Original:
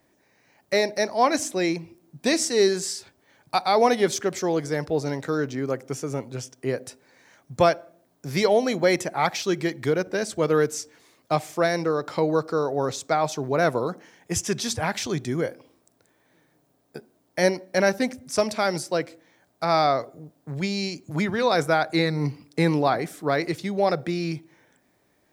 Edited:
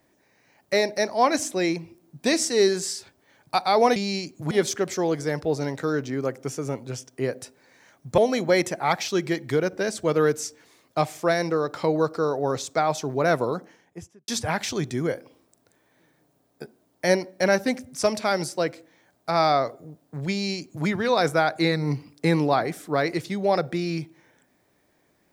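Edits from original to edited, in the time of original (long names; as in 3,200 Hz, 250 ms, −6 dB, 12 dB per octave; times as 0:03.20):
0:07.63–0:08.52: remove
0:13.82–0:14.62: fade out and dull
0:20.65–0:21.20: duplicate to 0:03.96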